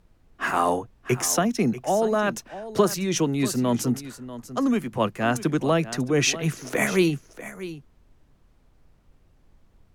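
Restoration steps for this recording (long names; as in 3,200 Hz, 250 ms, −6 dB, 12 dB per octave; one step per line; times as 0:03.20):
downward expander −50 dBFS, range −21 dB
echo removal 641 ms −14.5 dB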